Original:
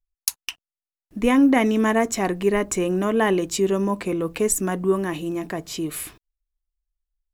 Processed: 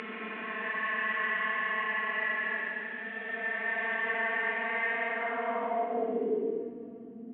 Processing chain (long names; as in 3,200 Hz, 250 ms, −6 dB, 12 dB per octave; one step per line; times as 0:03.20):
variable-slope delta modulation 16 kbit/s
extreme stretch with random phases 28×, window 0.05 s, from 0:01.83
band-pass filter sweep 2,000 Hz → 300 Hz, 0:05.03–0:06.79